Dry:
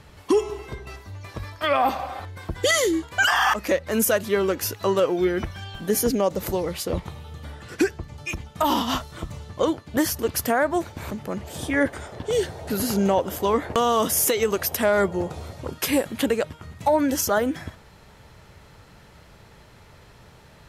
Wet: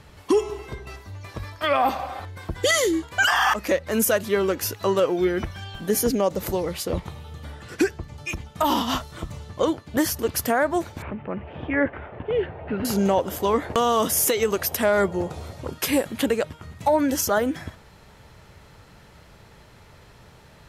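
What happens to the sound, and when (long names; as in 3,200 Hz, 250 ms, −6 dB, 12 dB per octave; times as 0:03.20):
0:11.02–0:12.85: Chebyshev low-pass filter 2,700 Hz, order 4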